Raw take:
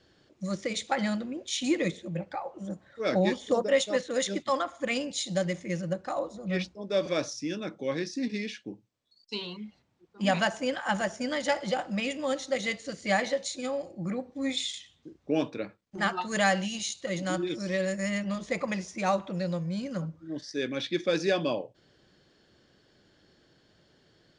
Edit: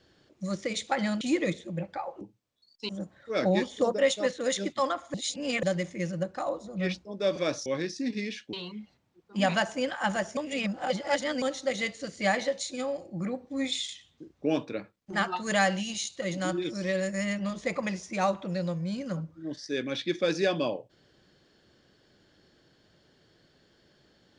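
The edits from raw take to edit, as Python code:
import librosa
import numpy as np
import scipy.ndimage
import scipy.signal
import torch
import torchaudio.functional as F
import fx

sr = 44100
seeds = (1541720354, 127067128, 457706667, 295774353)

y = fx.edit(x, sr, fx.cut(start_s=1.21, length_s=0.38),
    fx.reverse_span(start_s=4.84, length_s=0.49),
    fx.cut(start_s=7.36, length_s=0.47),
    fx.move(start_s=8.7, length_s=0.68, to_s=2.59),
    fx.reverse_span(start_s=11.22, length_s=1.05), tone=tone)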